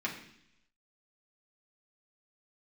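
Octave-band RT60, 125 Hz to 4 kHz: 0.90 s, 0.90 s, 0.75 s, 0.70 s, 0.90 s, 0.95 s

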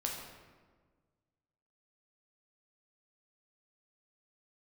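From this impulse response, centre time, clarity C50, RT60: 58 ms, 2.5 dB, 1.5 s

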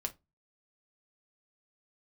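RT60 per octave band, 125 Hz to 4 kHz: 0.40 s, 0.30 s, 0.20 s, 0.20 s, 0.15 s, 0.15 s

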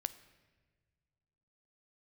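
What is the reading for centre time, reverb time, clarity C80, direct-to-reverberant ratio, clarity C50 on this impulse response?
5 ms, no single decay rate, 17.0 dB, 13.5 dB, 15.5 dB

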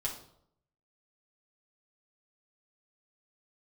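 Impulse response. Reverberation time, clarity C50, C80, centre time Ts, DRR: 0.70 s, 7.5 dB, 11.5 dB, 23 ms, -3.5 dB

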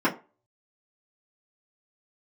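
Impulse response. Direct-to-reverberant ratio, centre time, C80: -9.5 dB, 15 ms, 20.0 dB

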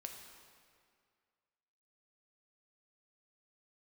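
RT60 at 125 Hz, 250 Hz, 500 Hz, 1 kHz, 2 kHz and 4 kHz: 2.0 s, 2.1 s, 2.1 s, 2.1 s, 2.0 s, 1.7 s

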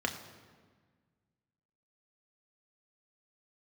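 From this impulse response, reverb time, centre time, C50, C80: 1.5 s, 21 ms, 9.5 dB, 10.5 dB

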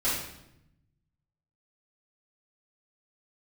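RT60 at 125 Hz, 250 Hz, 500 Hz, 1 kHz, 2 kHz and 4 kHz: 1.7 s, 1.3 s, 0.90 s, 0.75 s, 0.75 s, 0.70 s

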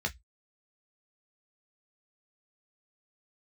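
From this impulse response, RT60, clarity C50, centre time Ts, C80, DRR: 0.10 s, 23.5 dB, 7 ms, 38.0 dB, 3.0 dB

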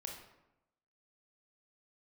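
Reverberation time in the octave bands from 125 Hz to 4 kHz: 1.0 s, 1.0 s, 0.95 s, 0.90 s, 0.75 s, 0.55 s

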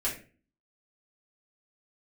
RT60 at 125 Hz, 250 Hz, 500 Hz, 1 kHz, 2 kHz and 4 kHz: 0.55 s, 0.55 s, 0.45 s, 0.35 s, 0.35 s, 0.30 s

